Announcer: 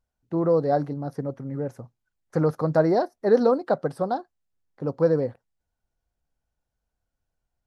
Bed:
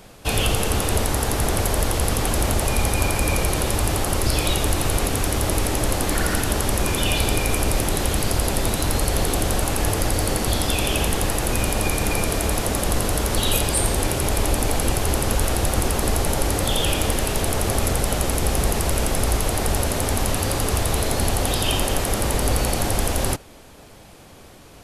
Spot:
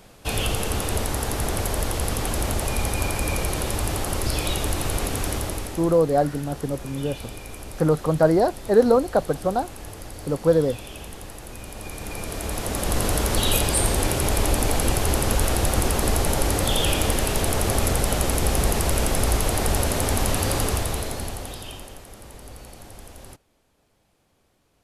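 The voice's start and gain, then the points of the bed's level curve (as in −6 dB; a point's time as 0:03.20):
5.45 s, +2.5 dB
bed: 0:05.33 −4 dB
0:06.01 −16.5 dB
0:11.62 −16.5 dB
0:13.06 −0.5 dB
0:20.61 −0.5 dB
0:22.05 −21 dB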